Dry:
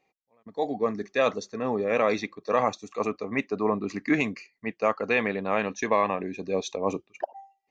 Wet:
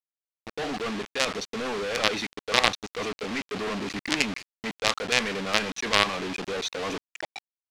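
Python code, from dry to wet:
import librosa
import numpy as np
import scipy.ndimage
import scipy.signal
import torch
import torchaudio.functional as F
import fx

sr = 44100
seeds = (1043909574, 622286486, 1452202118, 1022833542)

y = fx.quant_companded(x, sr, bits=2)
y = scipy.signal.sosfilt(scipy.signal.butter(2, 3800.0, 'lowpass', fs=sr, output='sos'), y)
y = fx.high_shelf(y, sr, hz=2300.0, db=11.0)
y = y * librosa.db_to_amplitude(-5.0)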